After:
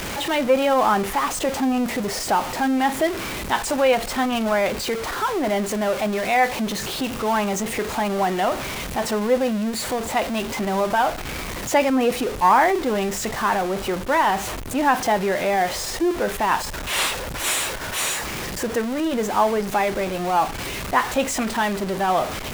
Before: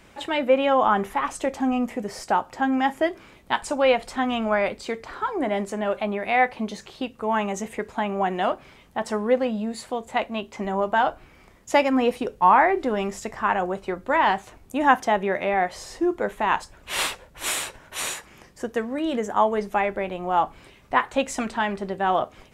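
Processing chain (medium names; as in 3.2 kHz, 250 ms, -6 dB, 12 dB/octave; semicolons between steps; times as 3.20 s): jump at every zero crossing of -23.5 dBFS; transformer saturation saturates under 430 Hz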